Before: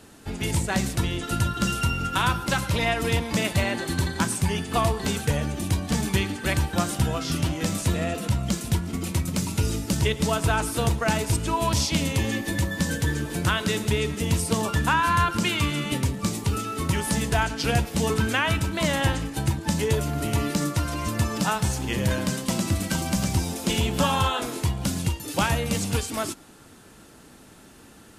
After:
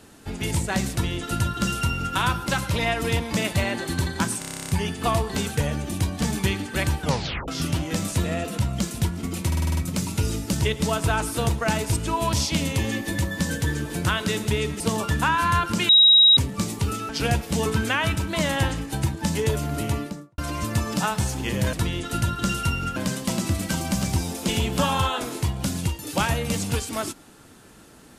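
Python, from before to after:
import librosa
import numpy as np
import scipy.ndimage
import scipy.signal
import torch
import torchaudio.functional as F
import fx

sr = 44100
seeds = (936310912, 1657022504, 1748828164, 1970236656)

y = fx.studio_fade_out(x, sr, start_s=20.23, length_s=0.59)
y = fx.edit(y, sr, fx.duplicate(start_s=0.91, length_s=1.23, to_s=22.17),
    fx.stutter(start_s=4.39, slice_s=0.03, count=11),
    fx.tape_stop(start_s=6.71, length_s=0.47),
    fx.stutter(start_s=9.17, slice_s=0.05, count=7),
    fx.cut(start_s=14.2, length_s=0.25),
    fx.bleep(start_s=15.54, length_s=0.48, hz=3820.0, db=-10.5),
    fx.cut(start_s=16.74, length_s=0.79), tone=tone)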